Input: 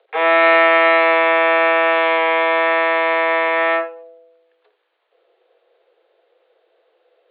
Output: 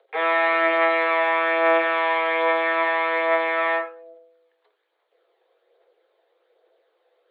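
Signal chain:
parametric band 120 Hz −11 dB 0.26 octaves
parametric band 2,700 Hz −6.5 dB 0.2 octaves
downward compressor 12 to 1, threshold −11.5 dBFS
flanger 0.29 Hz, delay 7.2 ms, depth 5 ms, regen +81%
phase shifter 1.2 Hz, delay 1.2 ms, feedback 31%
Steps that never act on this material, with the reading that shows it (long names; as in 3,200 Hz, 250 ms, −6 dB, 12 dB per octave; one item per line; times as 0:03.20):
parametric band 120 Hz: nothing at its input below 320 Hz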